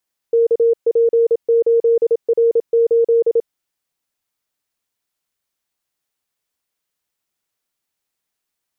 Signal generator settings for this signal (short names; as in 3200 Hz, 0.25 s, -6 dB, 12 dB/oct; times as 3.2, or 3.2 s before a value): Morse "KP8R8" 27 wpm 463 Hz -10 dBFS